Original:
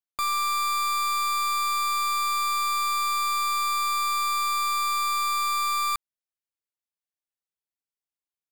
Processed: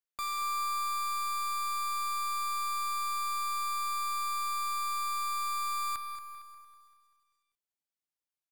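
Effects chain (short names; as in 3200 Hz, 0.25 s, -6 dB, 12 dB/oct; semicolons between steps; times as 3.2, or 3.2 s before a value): limiter -31 dBFS, peak gain reduction 5.5 dB; on a send: feedback echo 0.229 s, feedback 38%, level -12 dB; on the sum: lo-fi delay 0.195 s, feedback 55%, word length 11-bit, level -13 dB; gain -3 dB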